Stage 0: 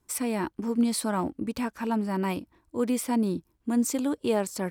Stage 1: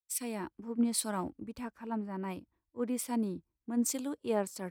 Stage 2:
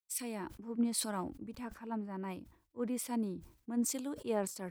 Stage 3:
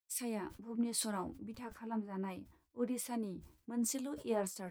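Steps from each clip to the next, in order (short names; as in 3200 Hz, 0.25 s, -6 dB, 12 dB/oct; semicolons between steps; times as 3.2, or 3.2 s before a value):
three-band expander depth 100%; gain -8 dB
sustainer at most 120 dB/s; gain -3 dB
flange 1.3 Hz, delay 9 ms, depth 5.4 ms, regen +40%; gain +2.5 dB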